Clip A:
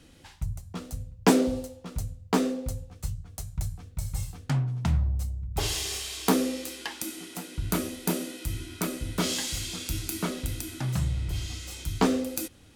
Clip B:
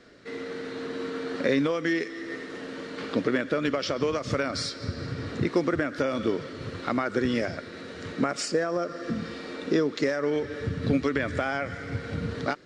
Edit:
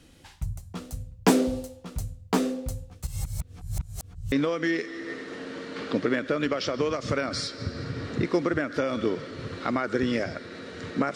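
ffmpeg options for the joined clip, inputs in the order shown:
-filter_complex "[0:a]apad=whole_dur=11.15,atrim=end=11.15,asplit=2[s0][s1];[s0]atrim=end=3.072[s2];[s1]atrim=start=3.068:end=4.322,asetpts=PTS-STARTPTS,areverse[s3];[1:a]atrim=start=1.538:end=8.37[s4];[s2][s3]acrossfade=d=0.004:c1=hsin:c2=hsin[s5];[s5][s4]acrossfade=d=0.004:c1=hsin:c2=hsin"

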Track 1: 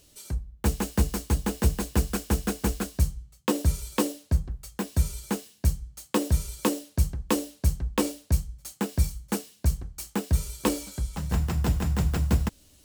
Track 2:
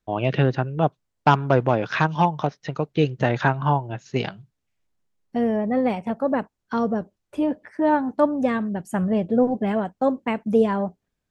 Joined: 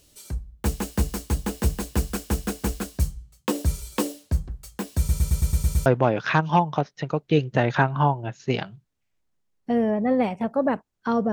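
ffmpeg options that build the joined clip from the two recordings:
-filter_complex "[0:a]apad=whole_dur=11.32,atrim=end=11.32,asplit=8[s0][s1][s2][s3][s4][s5][s6][s7];[s0]atrim=end=5.092[s8];[s1]atrim=start=4.978:end=5.092[s9];[s2]atrim=start=4.978:end=5.092[s10];[s3]atrim=start=4.978:end=5.092[s11];[s4]atrim=start=4.978:end=5.092[s12];[s5]atrim=start=4.978:end=5.092[s13];[s6]atrim=start=4.978:end=5.092[s14];[s7]atrim=start=4.978:end=5.092[s15];[1:a]atrim=start=1.518:end=6.98[s16];[s8][s9]acrossfade=d=0.004:c1=hsin:c2=hsin[s17];[s17][s10]acrossfade=d=0.004:c1=hsin:c2=hsin[s18];[s18][s11]acrossfade=d=0.004:c1=hsin:c2=hsin[s19];[s19][s12]acrossfade=d=0.004:c1=hsin:c2=hsin[s20];[s20][s13]acrossfade=d=0.004:c1=hsin:c2=hsin[s21];[s21][s14]acrossfade=d=0.004:c1=hsin:c2=hsin[s22];[s22][s15]acrossfade=d=0.004:c1=hsin:c2=hsin[s23];[s23][s16]acrossfade=d=0.004:c1=hsin:c2=hsin"

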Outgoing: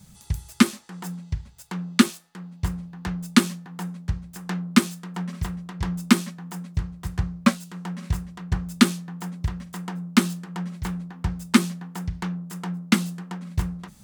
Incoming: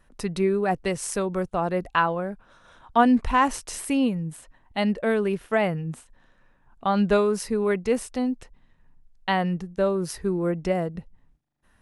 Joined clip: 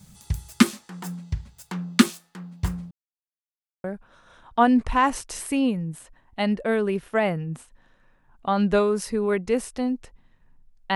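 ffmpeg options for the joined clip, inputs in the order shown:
-filter_complex "[0:a]apad=whole_dur=10.95,atrim=end=10.95,asplit=2[s0][s1];[s0]atrim=end=2.91,asetpts=PTS-STARTPTS,afade=t=out:st=2.906:d=0.004:c=hsin[s2];[s1]atrim=start=2.91:end=3.84,asetpts=PTS-STARTPTS,volume=0[s3];[1:a]atrim=start=2.22:end=9.33,asetpts=PTS-STARTPTS,afade=t=in:d=0.004:c=hsin[s4];[s2][s3][s4]concat=n=3:v=0:a=1"

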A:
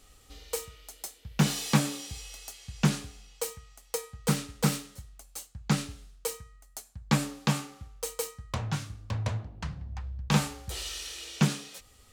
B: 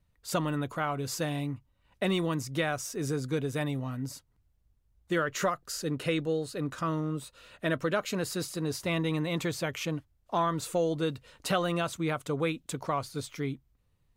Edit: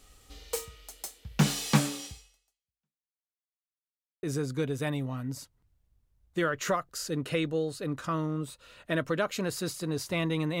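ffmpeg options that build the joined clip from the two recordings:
-filter_complex "[0:a]apad=whole_dur=10.6,atrim=end=10.6,asplit=2[s0][s1];[s0]atrim=end=3.27,asetpts=PTS-STARTPTS,afade=t=out:st=2.06:d=1.21:c=exp[s2];[s1]atrim=start=3.27:end=4.23,asetpts=PTS-STARTPTS,volume=0[s3];[1:a]atrim=start=2.97:end=9.34,asetpts=PTS-STARTPTS,afade=t=in:d=0.004:c=hsin[s4];[s2][s3][s4]concat=n=3:v=0:a=1"

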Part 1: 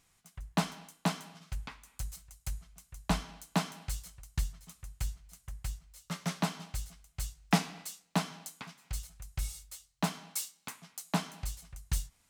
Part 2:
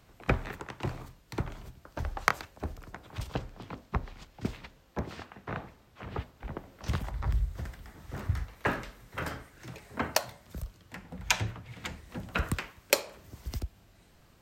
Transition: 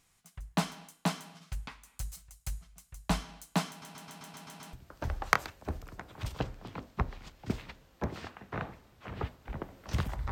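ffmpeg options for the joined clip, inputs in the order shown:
-filter_complex "[0:a]apad=whole_dur=10.31,atrim=end=10.31,asplit=8[s0][s1][s2][s3][s4][s5][s6][s7];[s0]atrim=end=3.822[s8];[s1]atrim=start=3.688:end=3.822[s9];[s2]atrim=start=3.688:end=3.822[s10];[s3]atrim=start=3.688:end=3.822[s11];[s4]atrim=start=3.688:end=3.822[s12];[s5]atrim=start=3.688:end=3.822[s13];[s6]atrim=start=3.688:end=3.822[s14];[s7]atrim=start=3.688:end=3.822[s15];[1:a]atrim=start=1.678:end=7.26[s16];[s8][s9]acrossfade=d=0.004:c1=hsin:c2=hsin[s17];[s17][s10]acrossfade=d=0.004:c1=hsin:c2=hsin[s18];[s18][s11]acrossfade=d=0.004:c1=hsin:c2=hsin[s19];[s19][s12]acrossfade=d=0.004:c1=hsin:c2=hsin[s20];[s20][s13]acrossfade=d=0.004:c1=hsin:c2=hsin[s21];[s21][s14]acrossfade=d=0.004:c1=hsin:c2=hsin[s22];[s22][s15]acrossfade=d=0.004:c1=hsin:c2=hsin[s23];[s23][s16]acrossfade=d=0.004:c1=hsin:c2=hsin"

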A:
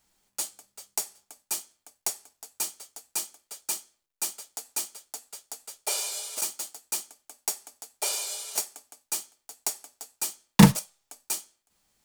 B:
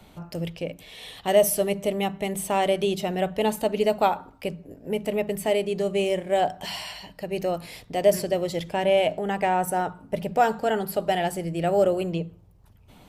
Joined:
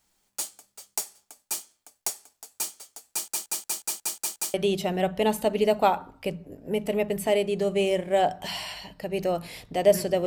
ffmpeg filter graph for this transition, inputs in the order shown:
-filter_complex "[0:a]apad=whole_dur=10.26,atrim=end=10.26,asplit=8[s0][s1][s2][s3][s4][s5][s6][s7];[s0]atrim=end=3.282[s8];[s1]atrim=start=3.098:end=3.282[s9];[s2]atrim=start=3.098:end=3.282[s10];[s3]atrim=start=3.098:end=3.282[s11];[s4]atrim=start=3.098:end=3.282[s12];[s5]atrim=start=3.098:end=3.282[s13];[s6]atrim=start=3.098:end=3.282[s14];[s7]atrim=start=3.098:end=3.282[s15];[1:a]atrim=start=2.728:end=8.45[s16];[s8][s9]acrossfade=d=0.004:c1=hsin:c2=hsin[s17];[s17][s10]acrossfade=d=0.004:c1=hsin:c2=hsin[s18];[s18][s11]acrossfade=d=0.004:c1=hsin:c2=hsin[s19];[s19][s12]acrossfade=d=0.004:c1=hsin:c2=hsin[s20];[s20][s13]acrossfade=d=0.004:c1=hsin:c2=hsin[s21];[s21][s14]acrossfade=d=0.004:c1=hsin:c2=hsin[s22];[s22][s15]acrossfade=d=0.004:c1=hsin:c2=hsin[s23];[s23][s16]acrossfade=d=0.004:c1=hsin:c2=hsin"

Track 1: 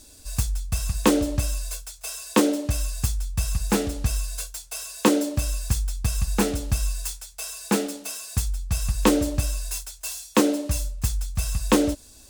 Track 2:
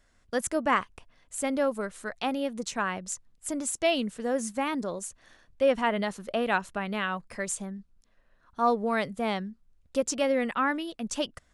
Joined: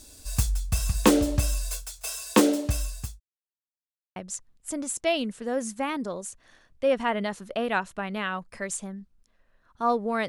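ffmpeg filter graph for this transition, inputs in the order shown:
-filter_complex "[0:a]apad=whole_dur=10.28,atrim=end=10.28,asplit=2[s0][s1];[s0]atrim=end=3.2,asetpts=PTS-STARTPTS,afade=t=out:st=2.4:d=0.8:c=qsin[s2];[s1]atrim=start=3.2:end=4.16,asetpts=PTS-STARTPTS,volume=0[s3];[1:a]atrim=start=2.94:end=9.06,asetpts=PTS-STARTPTS,afade=t=in:d=0.004:c=hsin[s4];[s2][s3][s4]concat=n=3:v=0:a=1"

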